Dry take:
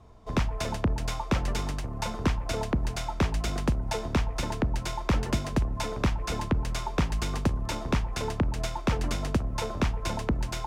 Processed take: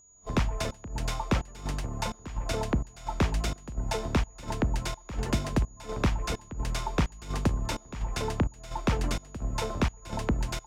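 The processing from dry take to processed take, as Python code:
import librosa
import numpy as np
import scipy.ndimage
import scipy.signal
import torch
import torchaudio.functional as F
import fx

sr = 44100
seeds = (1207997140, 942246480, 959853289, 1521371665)

y = fx.volume_shaper(x, sr, bpm=85, per_beat=1, depth_db=-22, release_ms=241.0, shape='slow start')
y = y + 10.0 ** (-56.0 / 20.0) * np.sin(2.0 * np.pi * 6800.0 * np.arange(len(y)) / sr)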